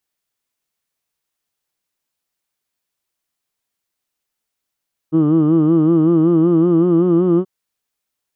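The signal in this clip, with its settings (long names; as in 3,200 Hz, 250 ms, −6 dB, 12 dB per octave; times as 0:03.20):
vowel from formants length 2.33 s, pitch 154 Hz, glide +2.5 semitones, F1 330 Hz, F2 1,200 Hz, F3 3,000 Hz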